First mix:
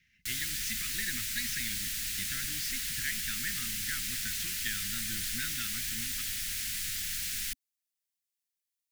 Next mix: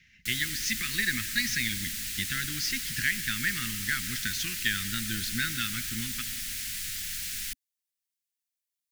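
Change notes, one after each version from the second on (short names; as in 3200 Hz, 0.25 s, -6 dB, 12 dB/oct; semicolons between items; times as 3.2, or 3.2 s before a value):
speech +8.0 dB; reverb: on, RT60 1.7 s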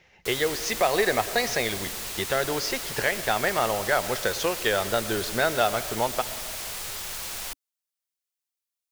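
master: remove elliptic band-stop 250–1700 Hz, stop band 60 dB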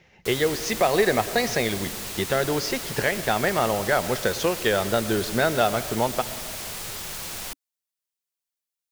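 master: add bell 180 Hz +7.5 dB 2.4 oct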